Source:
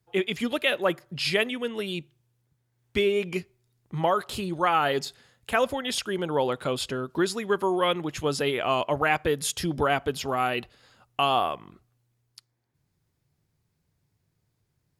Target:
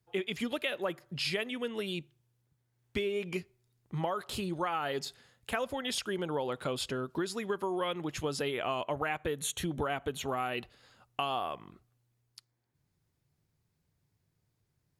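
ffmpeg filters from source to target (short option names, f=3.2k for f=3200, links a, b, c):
-filter_complex "[0:a]acompressor=threshold=-26dB:ratio=6,asettb=1/sr,asplit=3[a][b][c];[a]atrim=end=8.484[d];[b]atrim=start=8.48:end=10.56,asetpts=PTS-STARTPTS,afade=t=in:d=0.004:c=qsin,afade=t=out:st=2.076:d=0.004:c=qsin,asuperstop=centerf=5000:order=4:qfactor=3.6[e];[c]atrim=start=10.556[f];[d][e]acrossfade=d=0.004:c1=hsin:c2=qsin[g];[g][f]acrossfade=d=0.004:c1=qsin:c2=hsin,volume=-3.5dB"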